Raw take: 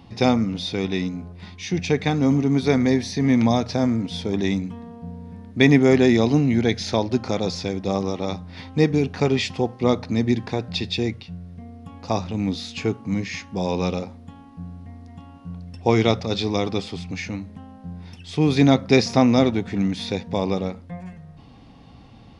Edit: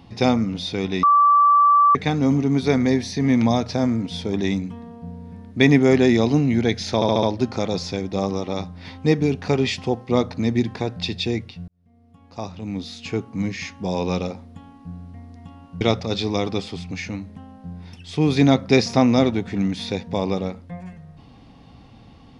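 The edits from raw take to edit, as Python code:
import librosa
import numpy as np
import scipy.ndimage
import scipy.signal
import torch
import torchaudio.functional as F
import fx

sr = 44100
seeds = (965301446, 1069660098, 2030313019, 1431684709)

y = fx.edit(x, sr, fx.bleep(start_s=1.03, length_s=0.92, hz=1160.0, db=-11.0),
    fx.stutter(start_s=6.95, slice_s=0.07, count=5),
    fx.fade_in_span(start_s=11.4, length_s=1.82),
    fx.cut(start_s=15.53, length_s=0.48), tone=tone)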